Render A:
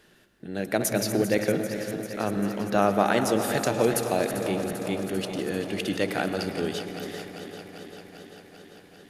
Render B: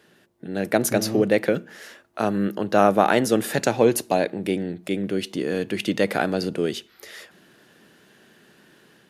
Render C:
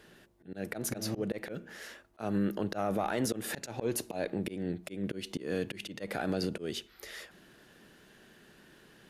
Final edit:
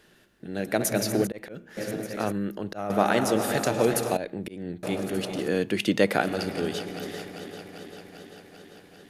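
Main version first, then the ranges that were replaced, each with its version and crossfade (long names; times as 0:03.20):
A
0:01.27–0:01.77: punch in from C
0:02.32–0:02.90: punch in from C
0:04.17–0:04.83: punch in from C
0:05.48–0:06.21: punch in from B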